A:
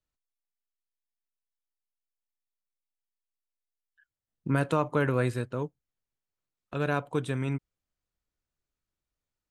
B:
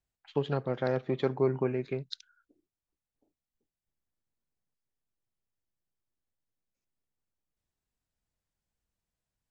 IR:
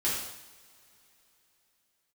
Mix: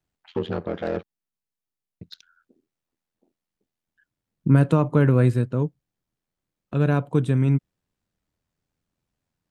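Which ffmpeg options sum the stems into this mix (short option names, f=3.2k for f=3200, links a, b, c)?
-filter_complex "[0:a]volume=-0.5dB[a];[1:a]asplit=2[b][c];[c]highpass=f=720:p=1,volume=19dB,asoftclip=type=tanh:threshold=-15dB[d];[b][d]amix=inputs=2:normalize=0,lowpass=f=4.1k:p=1,volume=-6dB,aeval=exprs='val(0)*sin(2*PI*42*n/s)':c=same,volume=-4.5dB,asplit=3[e][f][g];[e]atrim=end=1.03,asetpts=PTS-STARTPTS,afade=t=out:st=1.026:d=0.004:c=hsin[h];[f]atrim=start=1.03:end=2.01,asetpts=PTS-STARTPTS,volume=0[i];[g]atrim=start=2.01,asetpts=PTS-STARTPTS,afade=t=in:d=0.004:c=hsin[j];[h][i][j]concat=n=3:v=0:a=1[k];[a][k]amix=inputs=2:normalize=0,equalizer=f=160:t=o:w=2.7:g=13"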